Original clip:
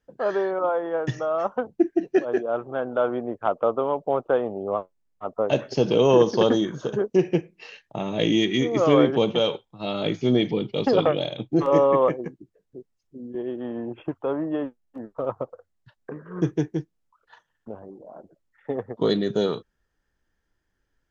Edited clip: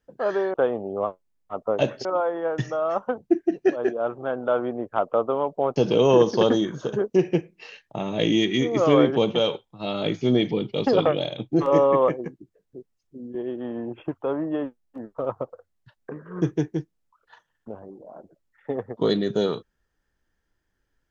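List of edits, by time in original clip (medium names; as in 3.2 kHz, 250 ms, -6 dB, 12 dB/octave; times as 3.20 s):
4.25–5.76 s: move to 0.54 s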